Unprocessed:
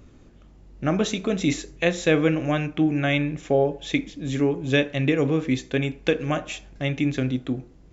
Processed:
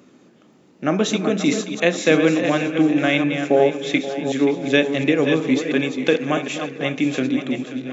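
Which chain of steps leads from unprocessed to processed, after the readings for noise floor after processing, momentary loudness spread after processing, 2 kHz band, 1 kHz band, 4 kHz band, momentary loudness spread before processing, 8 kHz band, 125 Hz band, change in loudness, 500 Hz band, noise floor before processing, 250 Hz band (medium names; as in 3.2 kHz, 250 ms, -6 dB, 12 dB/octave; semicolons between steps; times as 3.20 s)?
-53 dBFS, 7 LU, +5.0 dB, +5.0 dB, +5.0 dB, 8 LU, no reading, -2.5 dB, +4.5 dB, +5.0 dB, -51 dBFS, +4.5 dB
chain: chunks repeated in reverse 360 ms, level -7.5 dB; high-pass 180 Hz 24 dB/octave; two-band feedback delay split 450 Hz, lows 236 ms, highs 530 ms, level -12 dB; trim +4 dB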